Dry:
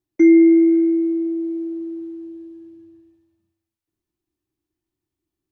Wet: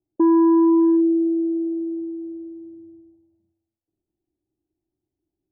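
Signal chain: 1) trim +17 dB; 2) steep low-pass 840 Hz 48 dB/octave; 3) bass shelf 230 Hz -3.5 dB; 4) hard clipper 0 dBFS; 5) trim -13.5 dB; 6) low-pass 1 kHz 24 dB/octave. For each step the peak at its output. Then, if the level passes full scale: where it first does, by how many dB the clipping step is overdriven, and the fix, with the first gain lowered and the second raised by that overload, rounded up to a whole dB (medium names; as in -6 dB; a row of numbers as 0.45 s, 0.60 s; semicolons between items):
+11.5 dBFS, +11.0 dBFS, +10.0 dBFS, 0.0 dBFS, -13.5 dBFS, -12.0 dBFS; step 1, 10.0 dB; step 1 +7 dB, step 5 -3.5 dB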